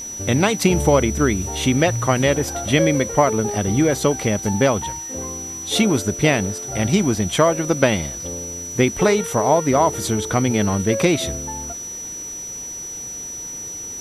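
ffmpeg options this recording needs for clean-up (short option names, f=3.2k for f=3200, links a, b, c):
-af "bandreject=f=5.9k:w=30,afwtdn=0.0063"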